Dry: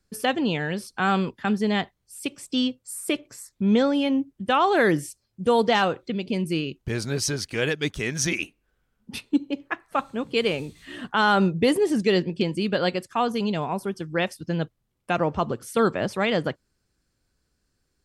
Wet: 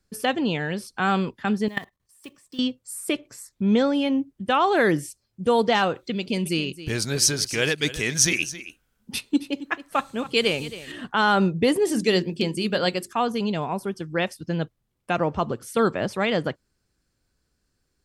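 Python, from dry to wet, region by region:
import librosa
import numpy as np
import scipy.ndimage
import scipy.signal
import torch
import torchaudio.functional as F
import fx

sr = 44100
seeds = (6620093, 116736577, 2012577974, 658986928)

y = fx.chain(x, sr, fx.block_float(bits=5),
    fx.small_body(hz=(1100.0, 1800.0), ring_ms=35, db=11),
    fx.level_steps(step_db=19), at=(1.68, 2.59))
y = fx.chain(y, sr, fx.high_shelf(hz=3000.0, db=9.5),
    fx.echo_single(ms=270, db=-15.0), at=(5.95, 10.92))
y = fx.chain(y, sr, fx.high_shelf(hz=5600.0, db=12.0),
    fx.hum_notches(base_hz=50, count=8), at=(11.85, 13.13))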